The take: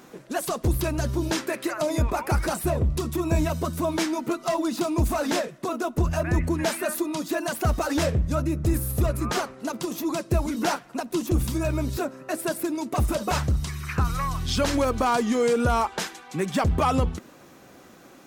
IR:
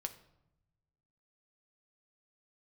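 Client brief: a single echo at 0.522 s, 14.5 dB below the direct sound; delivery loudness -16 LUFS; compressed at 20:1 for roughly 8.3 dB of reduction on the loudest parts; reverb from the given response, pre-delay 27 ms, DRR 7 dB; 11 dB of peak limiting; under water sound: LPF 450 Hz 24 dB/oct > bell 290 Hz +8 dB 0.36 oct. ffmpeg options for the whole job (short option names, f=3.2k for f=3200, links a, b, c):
-filter_complex "[0:a]acompressor=threshold=-26dB:ratio=20,alimiter=level_in=3.5dB:limit=-24dB:level=0:latency=1,volume=-3.5dB,aecho=1:1:522:0.188,asplit=2[a][b];[1:a]atrim=start_sample=2205,adelay=27[c];[b][c]afir=irnorm=-1:irlink=0,volume=-5.5dB[d];[a][d]amix=inputs=2:normalize=0,lowpass=f=450:w=0.5412,lowpass=f=450:w=1.3066,equalizer=f=290:t=o:w=0.36:g=8,volume=18.5dB"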